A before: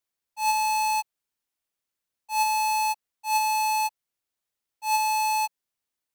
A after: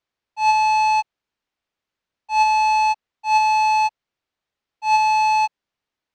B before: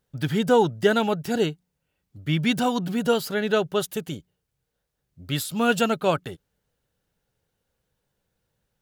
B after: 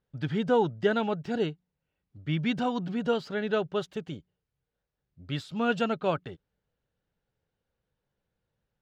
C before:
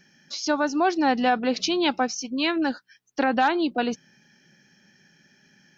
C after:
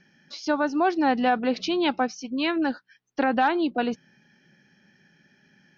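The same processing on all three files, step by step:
air absorption 160 m; normalise peaks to -12 dBFS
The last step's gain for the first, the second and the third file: +8.5, -5.0, 0.0 dB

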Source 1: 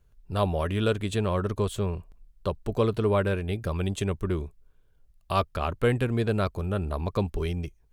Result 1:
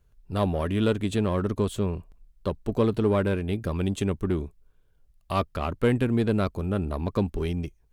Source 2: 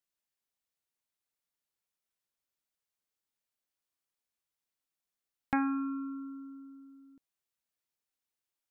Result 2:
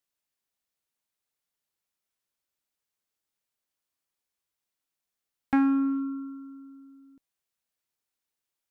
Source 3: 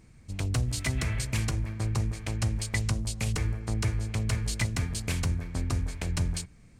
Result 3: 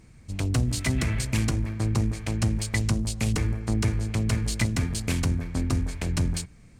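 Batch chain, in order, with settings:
in parallel at -5 dB: one-sided clip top -33.5 dBFS; on the sum: dynamic EQ 250 Hz, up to +7 dB, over -38 dBFS, Q 1.3; match loudness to -27 LUFS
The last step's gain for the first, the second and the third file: -4.0, -1.0, -0.5 dB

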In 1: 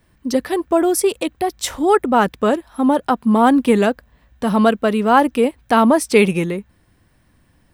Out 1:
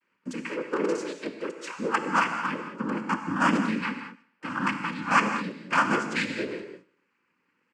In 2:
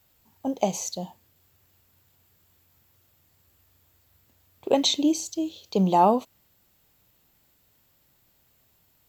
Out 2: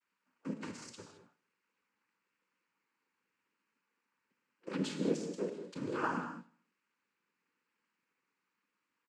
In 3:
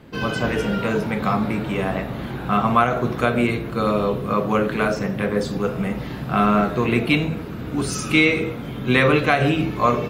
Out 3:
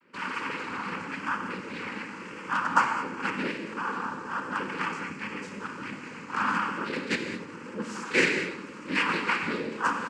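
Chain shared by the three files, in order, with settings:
HPF 290 Hz 24 dB/oct; FFT band-reject 380–900 Hz; LPF 4500 Hz 24 dB/oct; in parallel at -10.5 dB: companded quantiser 2-bit; on the sum: fixed phaser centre 1500 Hz, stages 4; noise vocoder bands 8; vibrato 0.93 Hz 35 cents; on a send: feedback echo 76 ms, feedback 53%, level -22.5 dB; on the sum: non-linear reverb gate 0.24 s flat, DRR 6 dB; gain -7 dB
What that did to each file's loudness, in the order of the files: -11.0, -14.5, -9.5 LU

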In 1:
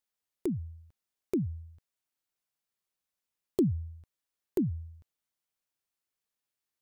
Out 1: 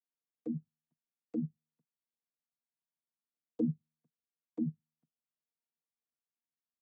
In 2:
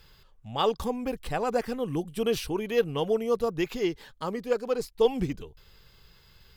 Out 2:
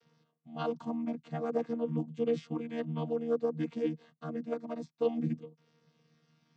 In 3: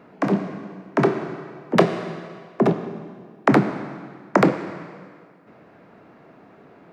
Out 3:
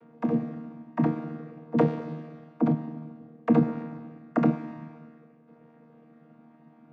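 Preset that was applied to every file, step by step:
chord vocoder bare fifth, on D#3; gain -4.5 dB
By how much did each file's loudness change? -5.5, -6.0, -5.5 LU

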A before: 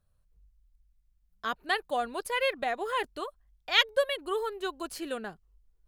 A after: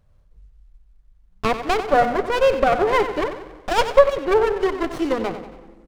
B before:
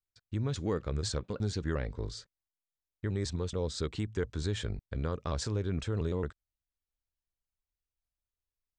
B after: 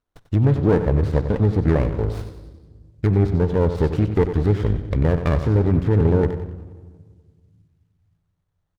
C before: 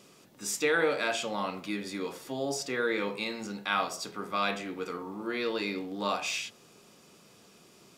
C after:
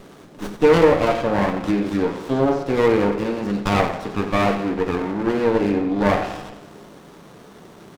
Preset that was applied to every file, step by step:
Chebyshev low-pass 8300 Hz, order 2; treble ducked by the level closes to 1300 Hz, closed at -31 dBFS; feedback echo 93 ms, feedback 48%, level -11 dB; shoebox room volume 1900 m³, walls mixed, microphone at 0.35 m; running maximum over 17 samples; match loudness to -20 LUFS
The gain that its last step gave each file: +16.0, +16.0, +15.5 dB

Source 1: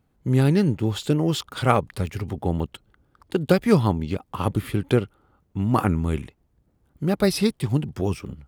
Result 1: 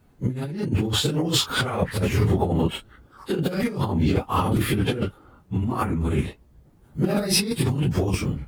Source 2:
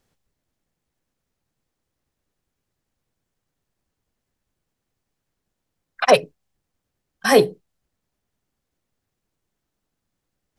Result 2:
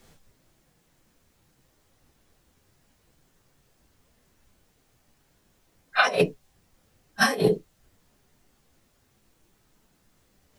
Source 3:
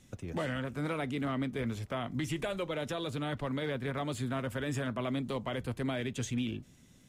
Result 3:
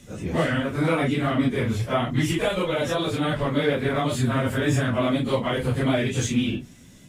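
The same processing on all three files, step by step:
phase scrambler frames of 0.1 s; negative-ratio compressor -28 dBFS, ratio -1; match loudness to -24 LUFS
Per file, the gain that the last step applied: +4.5, +4.5, +11.5 dB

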